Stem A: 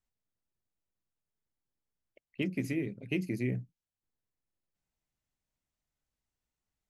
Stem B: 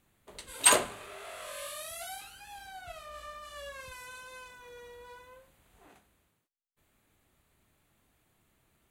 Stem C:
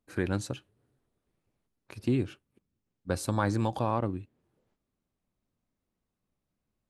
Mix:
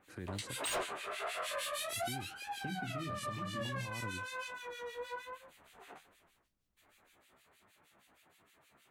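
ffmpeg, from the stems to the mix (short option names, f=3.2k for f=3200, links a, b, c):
-filter_complex "[0:a]lowshelf=f=410:g=12,adelay=250,volume=-7dB[a];[1:a]acrossover=split=1800[b][c];[b]aeval=exprs='val(0)*(1-1/2+1/2*cos(2*PI*6.4*n/s))':c=same[d];[c]aeval=exprs='val(0)*(1-1/2-1/2*cos(2*PI*6.4*n/s))':c=same[e];[d][e]amix=inputs=2:normalize=0,flanger=delay=10:depth=6.6:regen=49:speed=1.3:shape=triangular,asplit=2[f][g];[g]highpass=f=720:p=1,volume=29dB,asoftclip=type=tanh:threshold=-15dB[h];[f][h]amix=inputs=2:normalize=0,lowpass=f=4.1k:p=1,volume=-6dB,volume=-5.5dB[i];[2:a]volume=-7dB[j];[a][j]amix=inputs=2:normalize=0,acrossover=split=230|3000[k][l][m];[l]acompressor=threshold=-42dB:ratio=6[n];[k][n][m]amix=inputs=3:normalize=0,alimiter=level_in=9dB:limit=-24dB:level=0:latency=1:release=107,volume=-9dB,volume=0dB[o];[i][o]amix=inputs=2:normalize=0,alimiter=level_in=6dB:limit=-24dB:level=0:latency=1:release=449,volume=-6dB"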